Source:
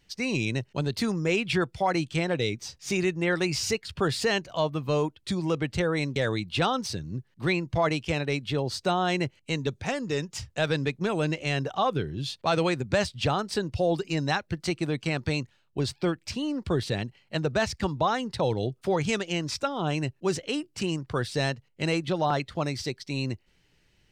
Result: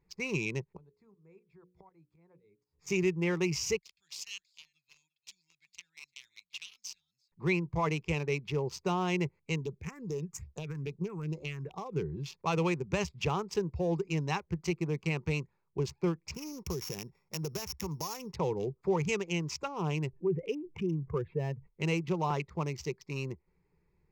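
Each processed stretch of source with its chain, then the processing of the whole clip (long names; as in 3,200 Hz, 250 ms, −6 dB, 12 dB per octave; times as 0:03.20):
0:00.64–0:02.80: fake sidechain pumping 120 BPM, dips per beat 2, −15 dB, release 188 ms + mains-hum notches 60/120/180/240/300/360/420/480/540 Hz + gate with flip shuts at −32 dBFS, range −28 dB
0:03.78–0:07.32: inverse Chebyshev high-pass filter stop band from 1,200 Hz, stop band 50 dB + single-tap delay 346 ms −17 dB
0:09.61–0:11.93: high-shelf EQ 4,500 Hz +9.5 dB + downward compressor 10 to 1, threshold −26 dBFS + all-pass phaser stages 4, 2.4 Hz, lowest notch 580–2,300 Hz
0:16.34–0:18.33: samples sorted by size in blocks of 8 samples + high-shelf EQ 3,600 Hz +10 dB + downward compressor, threshold −27 dBFS
0:20.13–0:21.67: expanding power law on the bin magnitudes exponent 1.7 + Chebyshev low-pass with heavy ripple 3,100 Hz, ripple 3 dB + envelope flattener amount 50%
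whole clip: adaptive Wiener filter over 15 samples; EQ curve with evenly spaced ripples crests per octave 0.77, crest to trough 11 dB; level −6.5 dB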